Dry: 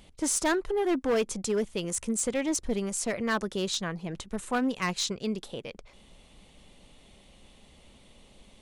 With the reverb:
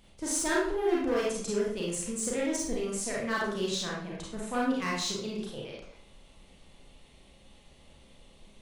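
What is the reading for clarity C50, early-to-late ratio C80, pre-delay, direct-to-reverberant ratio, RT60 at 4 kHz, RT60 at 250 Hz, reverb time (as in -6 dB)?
1.0 dB, 5.5 dB, 30 ms, -5.0 dB, 0.45 s, 0.60 s, 0.60 s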